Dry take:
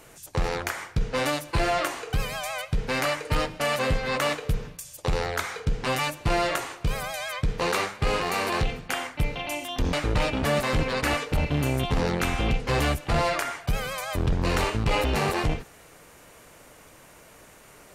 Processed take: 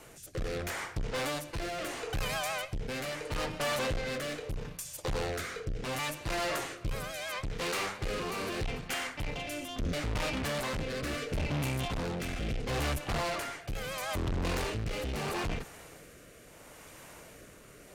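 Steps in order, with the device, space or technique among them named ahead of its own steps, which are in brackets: overdriven rotary cabinet (tube stage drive 32 dB, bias 0.4; rotary speaker horn 0.75 Hz); gain +3 dB

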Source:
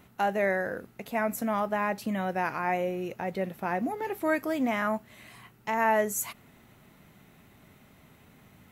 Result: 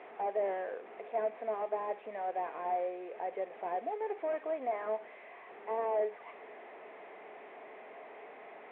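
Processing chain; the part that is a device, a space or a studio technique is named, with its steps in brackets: digital answering machine (BPF 390–3100 Hz; delta modulation 16 kbps, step -38.5 dBFS; speaker cabinet 400–3200 Hz, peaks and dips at 430 Hz +10 dB, 690 Hz +8 dB, 1400 Hz -8 dB, 2900 Hz -8 dB); gain -6.5 dB

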